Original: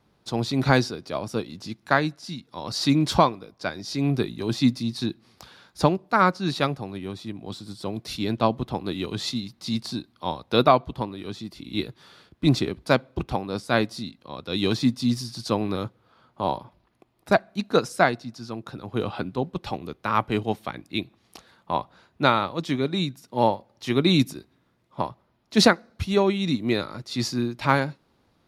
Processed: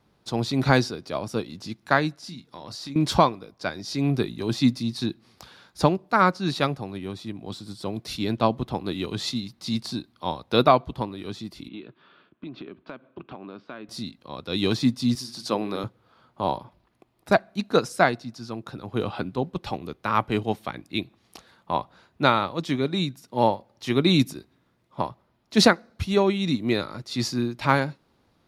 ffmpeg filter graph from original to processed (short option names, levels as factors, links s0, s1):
-filter_complex "[0:a]asettb=1/sr,asplit=3[s0][s1][s2];[s0]atrim=end=2.224[s3];[s1]atrim=start=2.22:end=2.96,asetpts=PTS-STARTPTS,afade=t=in:d=0.004:c=qsin,afade=t=out:st=0.736:d=0.004:c=qsin,acompressor=threshold=0.0178:ratio=6:attack=3.2:release=140:knee=1:detection=peak,asplit=2[s4][s5];[s5]adelay=29,volume=0.282[s6];[s4][s6]amix=inputs=2:normalize=0,atrim=end_sample=32634[s7];[s2]atrim=start=2.956[s8];[s3][s7]acrossfade=d=0.004:c1=hsin:c2=qsin[s9];[s9][s8]acrossfade=d=0.004:c1=qsin:c2=hsin,asettb=1/sr,asplit=3[s10][s11][s12];[s10]atrim=end=11.684[s13];[s11]atrim=start=11.68:end=13.89,asetpts=PTS-STARTPTS,afade=t=in:d=0.004:c=qsin,afade=t=out:st=2.206:d=0.004:c=qsin,highpass=240,equalizer=f=490:t=q:w=4:g=-7,equalizer=f=810:t=q:w=4:g=-8,equalizer=f=2000:t=q:w=4:g=-8,lowpass=f=2800:w=0.5412,lowpass=f=2800:w=1.3066,acompressor=threshold=0.02:ratio=10:attack=3.2:release=140:knee=1:detection=peak[s14];[s12]atrim=start=13.886[s15];[s13][s14]acrossfade=d=0.004:c1=hsin:c2=qsin[s16];[s16][s15]acrossfade=d=0.004:c1=qsin:c2=hsin,asettb=1/sr,asplit=3[s17][s18][s19];[s17]atrim=end=15.154[s20];[s18]atrim=start=15.15:end=15.84,asetpts=PTS-STARTPTS,afade=t=in:d=0.004:c=qsin,afade=t=out:st=0.686:d=0.004:c=qsin,highpass=210,bandreject=f=60:t=h:w=6,bandreject=f=120:t=h:w=6,bandreject=f=180:t=h:w=6,bandreject=f=240:t=h:w=6,bandreject=f=300:t=h:w=6,bandreject=f=360:t=h:w=6,bandreject=f=420:t=h:w=6,bandreject=f=480:t=h:w=6[s21];[s19]atrim=start=15.836[s22];[s20][s21]acrossfade=d=0.004:c1=hsin:c2=qsin[s23];[s23][s22]acrossfade=d=0.004:c1=qsin:c2=hsin"